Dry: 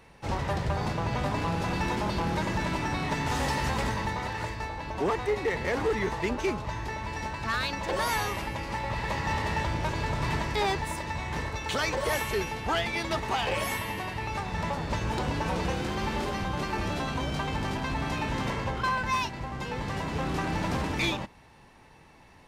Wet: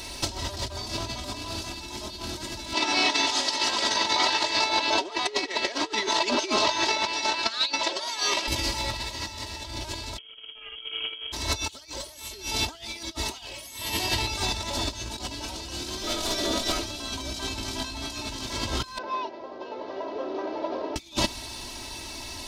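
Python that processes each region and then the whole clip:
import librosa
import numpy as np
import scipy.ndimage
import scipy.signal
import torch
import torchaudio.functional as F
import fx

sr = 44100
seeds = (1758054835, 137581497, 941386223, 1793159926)

y = fx.chain(x, sr, fx.bandpass_edges(low_hz=390.0, high_hz=4600.0),
    fx.over_compress(threshold_db=-37.0, ratio=-0.5), at=(2.73, 8.48))
y = fx.chain(y, sr, fx.sample_sort(block=16),
    fx.freq_invert(carrier_hz=3200), at=(10.18, 11.32))
y = fx.chain(y, sr, fx.notch(hz=4800.0, q=20.0),
    fx.ring_mod(carrier_hz=390.0), at=(16.03, 16.83))
y = fx.chain(y, sr, fx.cvsd(bps=32000),
    fx.ladder_bandpass(hz=550.0, resonance_pct=55), at=(18.98, 20.96))
y = fx.high_shelf_res(y, sr, hz=2900.0, db=13.5, q=1.5)
y = y + 0.83 * np.pad(y, (int(3.1 * sr / 1000.0), 0))[:len(y)]
y = fx.over_compress(y, sr, threshold_db=-33.0, ratio=-0.5)
y = y * 10.0 ** (4.5 / 20.0)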